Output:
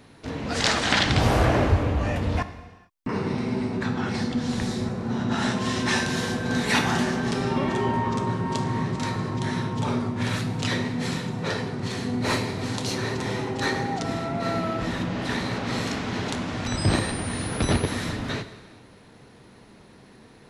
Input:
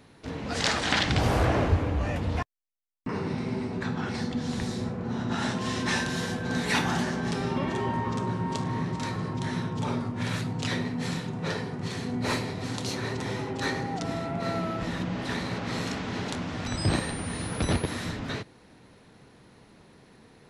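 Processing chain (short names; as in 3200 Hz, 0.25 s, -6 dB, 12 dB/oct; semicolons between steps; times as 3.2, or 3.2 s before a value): non-linear reverb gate 0.48 s falling, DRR 10 dB; gain +3.5 dB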